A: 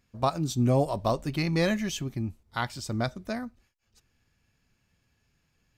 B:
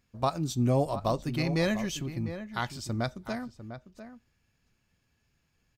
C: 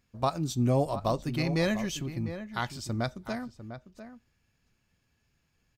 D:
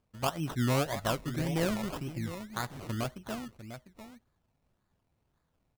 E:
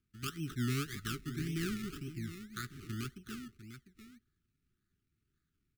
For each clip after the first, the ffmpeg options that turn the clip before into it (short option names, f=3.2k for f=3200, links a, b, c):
-filter_complex "[0:a]asplit=2[a][b];[b]adelay=699.7,volume=-11dB,highshelf=f=4k:g=-15.7[c];[a][c]amix=inputs=2:normalize=0,volume=-2dB"
-af anull
-af "acrusher=samples=22:mix=1:aa=0.000001:lfo=1:lforange=13.2:lforate=1.8,volume=-3dB"
-af "asuperstop=centerf=710:order=20:qfactor=0.9,volume=-5dB"